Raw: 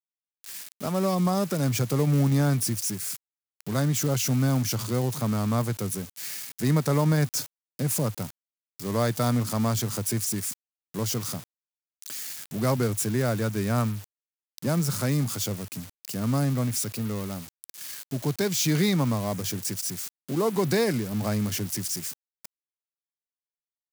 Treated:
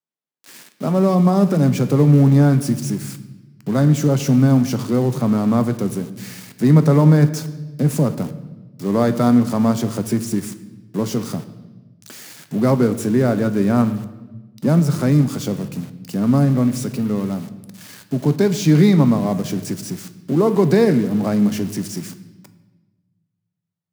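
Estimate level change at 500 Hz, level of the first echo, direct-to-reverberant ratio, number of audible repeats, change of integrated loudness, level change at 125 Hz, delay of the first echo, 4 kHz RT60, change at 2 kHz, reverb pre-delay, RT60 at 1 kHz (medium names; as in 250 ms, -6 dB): +9.0 dB, no echo, 10.0 dB, no echo, +9.0 dB, +9.0 dB, no echo, 1.0 s, +3.5 dB, 7 ms, 1.0 s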